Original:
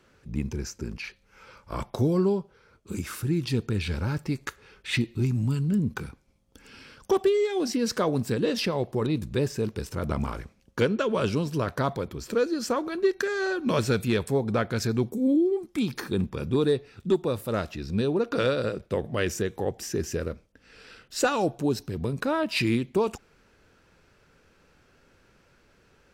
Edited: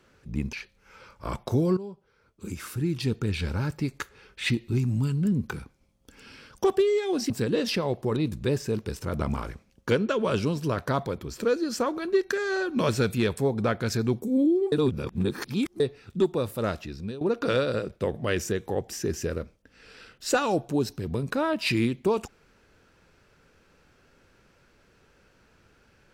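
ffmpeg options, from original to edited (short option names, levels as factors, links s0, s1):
-filter_complex "[0:a]asplit=7[s0][s1][s2][s3][s4][s5][s6];[s0]atrim=end=0.532[s7];[s1]atrim=start=0.998:end=2.24,asetpts=PTS-STARTPTS,afade=t=out:st=1.238:d=0.004:c=hsin:silence=0.158489[s8];[s2]atrim=start=2.24:end=7.772,asetpts=PTS-STARTPTS,afade=t=in:d=1.73:c=qsin:silence=0.158489[s9];[s3]atrim=start=8.198:end=15.622[s10];[s4]atrim=start=15.618:end=16.702,asetpts=PTS-STARTPTS,areverse[s11];[s5]atrim=start=16.698:end=18.11,asetpts=PTS-STARTPTS,afade=t=out:st=0.972:d=0.44:silence=0.149624[s12];[s6]atrim=start=18.11,asetpts=PTS-STARTPTS,afade=t=in:d=0.004:c=hsin:silence=0.149624[s13];[s8][s9]concat=n=2:v=0:a=1[s14];[s7][s14]acrossfade=d=0.004:c1=hsin:c2=hsin[s15];[s15][s10]acrossfade=d=0.004:c1=hsin:c2=hsin[s16];[s16][s11]acrossfade=d=0.004:c1=hsin:c2=hsin[s17];[s12][s13]concat=n=2:v=0:a=1[s18];[s17][s18]acrossfade=d=0.004:c1=hsin:c2=hsin"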